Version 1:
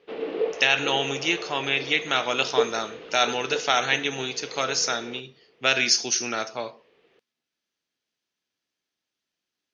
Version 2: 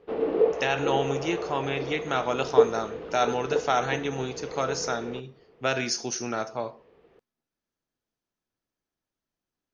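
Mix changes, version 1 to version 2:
background +4.0 dB; master: remove frequency weighting D

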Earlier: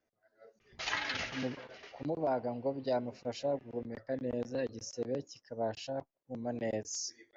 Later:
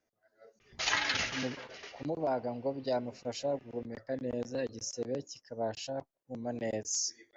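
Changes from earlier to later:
background +3.5 dB; master: remove distance through air 92 m

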